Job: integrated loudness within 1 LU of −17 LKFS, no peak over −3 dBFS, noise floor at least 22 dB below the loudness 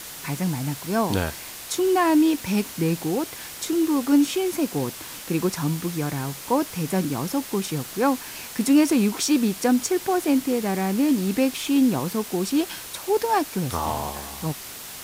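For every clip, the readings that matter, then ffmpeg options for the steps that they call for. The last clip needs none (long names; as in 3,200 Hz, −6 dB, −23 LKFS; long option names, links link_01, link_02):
background noise floor −38 dBFS; target noise floor −46 dBFS; integrated loudness −23.5 LKFS; sample peak −7.0 dBFS; target loudness −17.0 LKFS
→ -af "afftdn=noise_reduction=8:noise_floor=-38"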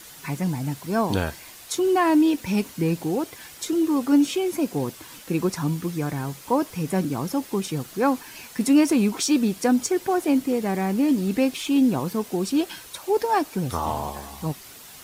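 background noise floor −44 dBFS; target noise floor −46 dBFS
→ -af "afftdn=noise_reduction=6:noise_floor=-44"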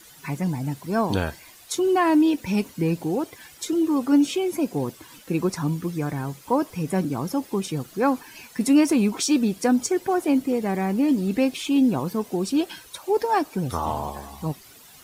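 background noise floor −49 dBFS; integrated loudness −24.0 LKFS; sample peak −7.5 dBFS; target loudness −17.0 LKFS
→ -af "volume=7dB,alimiter=limit=-3dB:level=0:latency=1"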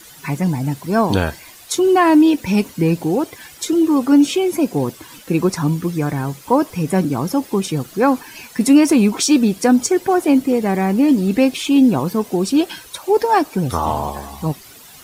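integrated loudness −17.0 LKFS; sample peak −3.0 dBFS; background noise floor −42 dBFS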